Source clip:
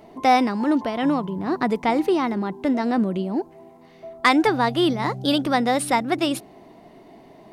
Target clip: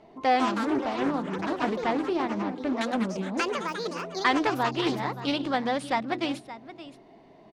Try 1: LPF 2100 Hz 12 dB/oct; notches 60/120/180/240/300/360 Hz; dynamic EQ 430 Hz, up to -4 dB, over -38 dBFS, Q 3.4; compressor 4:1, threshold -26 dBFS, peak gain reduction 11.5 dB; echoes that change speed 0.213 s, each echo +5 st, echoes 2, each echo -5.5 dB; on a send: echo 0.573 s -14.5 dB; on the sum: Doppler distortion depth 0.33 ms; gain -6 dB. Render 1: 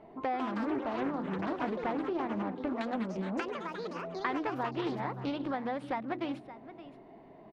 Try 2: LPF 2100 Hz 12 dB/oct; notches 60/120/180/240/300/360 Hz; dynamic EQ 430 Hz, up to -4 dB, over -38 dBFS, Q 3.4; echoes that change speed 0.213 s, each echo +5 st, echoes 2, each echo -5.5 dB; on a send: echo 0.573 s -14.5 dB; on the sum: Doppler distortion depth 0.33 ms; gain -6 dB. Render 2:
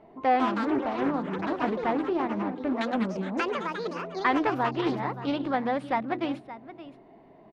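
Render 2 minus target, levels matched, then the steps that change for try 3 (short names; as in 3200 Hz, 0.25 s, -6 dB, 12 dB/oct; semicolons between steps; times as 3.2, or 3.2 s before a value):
8000 Hz band -11.0 dB
change: LPF 5800 Hz 12 dB/oct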